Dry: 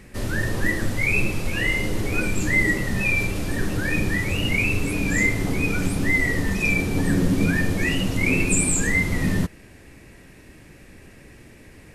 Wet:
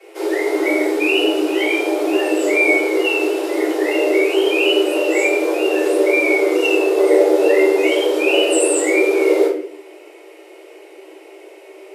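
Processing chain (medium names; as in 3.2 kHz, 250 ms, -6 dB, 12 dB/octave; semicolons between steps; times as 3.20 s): peaking EQ 89 Hz +12.5 dB 0.35 oct; frequency shift +300 Hz; simulated room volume 60 m³, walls mixed, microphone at 3.3 m; trim -10.5 dB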